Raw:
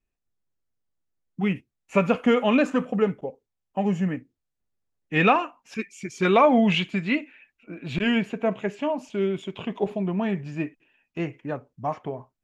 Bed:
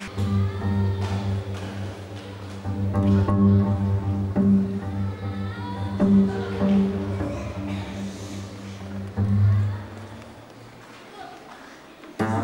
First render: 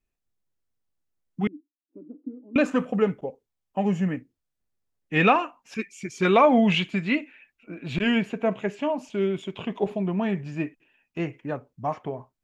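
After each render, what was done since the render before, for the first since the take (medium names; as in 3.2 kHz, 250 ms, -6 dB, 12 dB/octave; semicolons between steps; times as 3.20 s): 1.47–2.56 s: Butterworth band-pass 300 Hz, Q 5.7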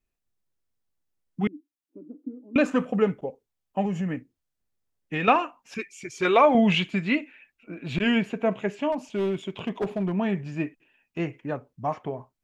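3.85–5.28 s: compression, threshold -24 dBFS; 5.78–6.55 s: peaking EQ 200 Hz -13.5 dB 0.5 oct; 8.92–10.15 s: hard clipper -21.5 dBFS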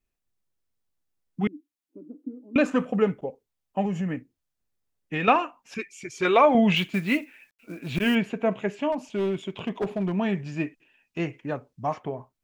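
6.76–8.15 s: companded quantiser 6-bit; 10.01–12.00 s: peaking EQ 5.3 kHz +5 dB 1.8 oct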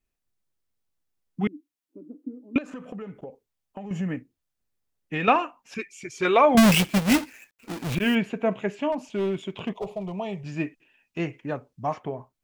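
2.58–3.91 s: compression 16:1, threshold -33 dBFS; 6.57–7.95 s: square wave that keeps the level; 9.73–10.44 s: static phaser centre 660 Hz, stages 4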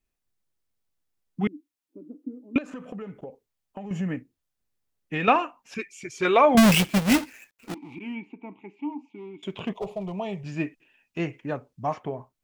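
7.74–9.43 s: vowel filter u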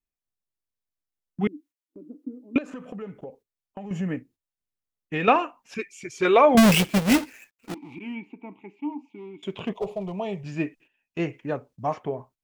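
gate -53 dBFS, range -11 dB; dynamic bell 440 Hz, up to +4 dB, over -37 dBFS, Q 1.8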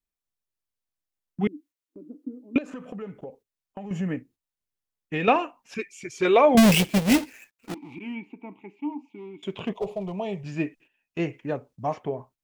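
dynamic bell 1.3 kHz, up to -5 dB, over -40 dBFS, Q 1.8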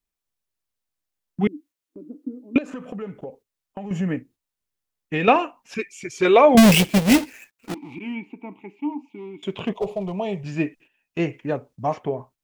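trim +4 dB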